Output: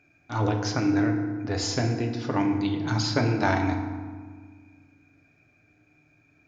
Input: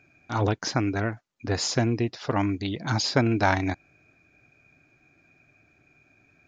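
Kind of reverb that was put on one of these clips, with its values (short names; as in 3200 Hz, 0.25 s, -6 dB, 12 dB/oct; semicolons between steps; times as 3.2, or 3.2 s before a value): FDN reverb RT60 1.6 s, low-frequency decay 1.45×, high-frequency decay 0.55×, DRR 2.5 dB; gain -3.5 dB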